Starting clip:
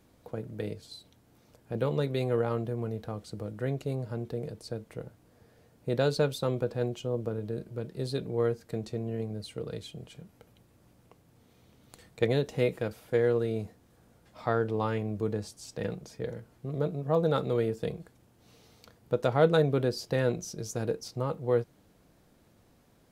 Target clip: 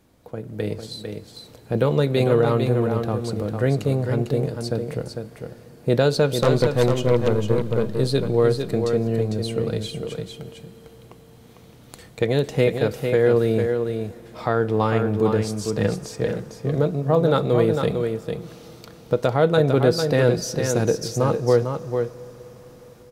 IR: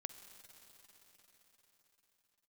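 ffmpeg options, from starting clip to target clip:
-filter_complex "[0:a]dynaudnorm=f=390:g=3:m=2.51,alimiter=limit=0.316:level=0:latency=1:release=344,asettb=1/sr,asplit=3[s0][s1][s2];[s0]atrim=end=6.424[s3];[s1]atrim=start=6.42:end=7.83,asetpts=PTS-STARTPTS,afade=t=in:d=0.004:c=qsin,afade=t=out:st=1.406:d=0.004:c=qsin,aeval=exprs='0.316*(cos(1*acos(clip(val(0)/0.316,-1,1)))-cos(1*PI/2))+0.0501*(cos(5*acos(clip(val(0)/0.316,-1,1)))-cos(5*PI/2))+0.0355*(cos(7*acos(clip(val(0)/0.316,-1,1)))-cos(7*PI/2))+0.0224*(cos(8*acos(clip(val(0)/0.316,-1,1)))-cos(8*PI/2))':c=same[s4];[s2]atrim=start=7.826[s5];[s3][s4]acrossfade=d=0.004:c1=hsin:c2=qsin[s6];[s6][s5]acrossfade=d=0.004:c1=qsin:c2=hsin,aecho=1:1:451:0.501,asplit=2[s7][s8];[1:a]atrim=start_sample=2205,asetrate=38367,aresample=44100[s9];[s8][s9]afir=irnorm=-1:irlink=0,volume=0.631[s10];[s7][s10]amix=inputs=2:normalize=0"

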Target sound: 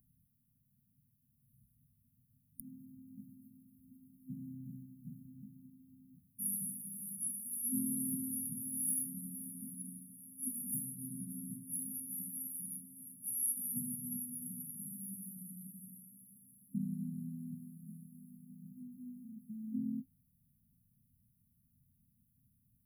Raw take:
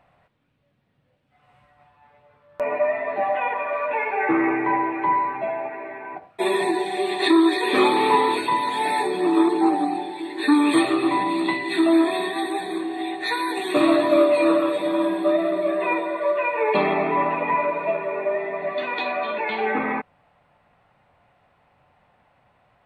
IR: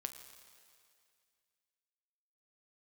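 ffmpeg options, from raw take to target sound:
-af "afftfilt=real='re*(1-between(b*sr/4096,260,9600))':imag='im*(1-between(b*sr/4096,260,9600))':win_size=4096:overlap=0.75,aexciter=amount=7.2:drive=7.7:freq=7800,volume=0.531"

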